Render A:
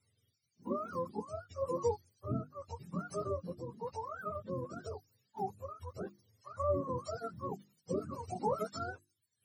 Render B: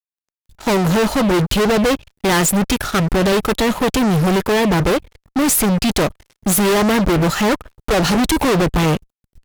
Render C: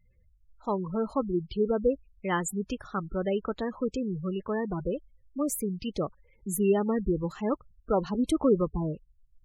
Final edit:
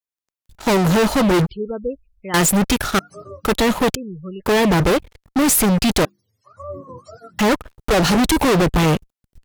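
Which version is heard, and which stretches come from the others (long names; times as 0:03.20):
B
0:01.49–0:02.34: punch in from C
0:02.99–0:03.45: punch in from A
0:03.95–0:04.46: punch in from C
0:06.05–0:07.39: punch in from A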